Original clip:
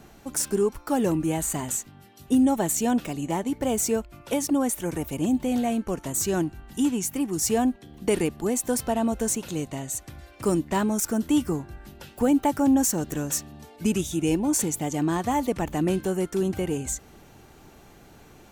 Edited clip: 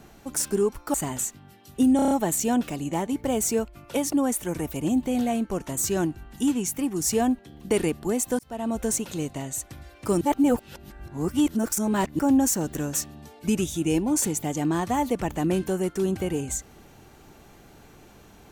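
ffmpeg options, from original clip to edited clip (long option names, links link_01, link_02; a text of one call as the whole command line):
ffmpeg -i in.wav -filter_complex "[0:a]asplit=10[link_01][link_02][link_03][link_04][link_05][link_06][link_07][link_08][link_09][link_10];[link_01]atrim=end=0.942[link_11];[link_02]atrim=start=1.458:end=2.512[link_12];[link_03]atrim=start=2.478:end=2.512[link_13];[link_04]atrim=start=2.478:end=2.512[link_14];[link_05]atrim=start=2.478:end=2.512[link_15];[link_06]atrim=start=2.478:end=2.512[link_16];[link_07]atrim=start=2.478:end=8.76,asetpts=PTS-STARTPTS,afade=type=out:start_time=6.278:duration=0.004:curve=hsin[link_17];[link_08]atrim=start=8.76:end=10.582,asetpts=PTS-STARTPTS,afade=type=in:duration=0.43[link_18];[link_09]atrim=start=10.578:end=12.562,asetpts=PTS-STARTPTS,areverse[link_19];[link_10]atrim=start=12.558[link_20];[link_11][link_12]acrossfade=duration=0.004:curve1=hsin:curve2=hsin[link_21];[link_21][link_13]acrossfade=duration=0.004:curve1=hsin:curve2=hsin[link_22];[link_22][link_14]acrossfade=duration=0.004:curve1=hsin:curve2=hsin[link_23];[link_23][link_15]acrossfade=duration=0.004:curve1=hsin:curve2=hsin[link_24];[link_24][link_16]acrossfade=duration=0.004:curve1=hsin:curve2=hsin[link_25];[link_17][link_18]concat=n=2:v=0:a=1[link_26];[link_25][link_26]acrossfade=duration=0.004:curve1=hsin:curve2=hsin[link_27];[link_27][link_19]acrossfade=duration=0.004:curve1=hsin:curve2=hsin[link_28];[link_28][link_20]acrossfade=duration=0.004:curve1=hsin:curve2=hsin" out.wav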